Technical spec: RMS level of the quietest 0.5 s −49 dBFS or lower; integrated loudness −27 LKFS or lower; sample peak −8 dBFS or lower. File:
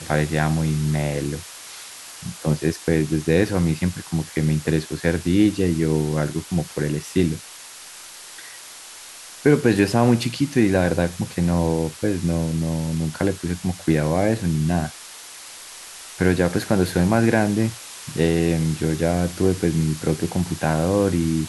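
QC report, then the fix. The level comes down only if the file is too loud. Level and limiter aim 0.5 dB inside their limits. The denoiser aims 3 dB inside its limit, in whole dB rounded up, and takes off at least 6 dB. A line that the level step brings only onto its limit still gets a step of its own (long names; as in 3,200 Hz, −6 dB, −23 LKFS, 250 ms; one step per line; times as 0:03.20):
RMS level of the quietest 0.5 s −40 dBFS: out of spec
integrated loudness −21.5 LKFS: out of spec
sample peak −4.0 dBFS: out of spec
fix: broadband denoise 6 dB, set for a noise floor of −40 dBFS
level −6 dB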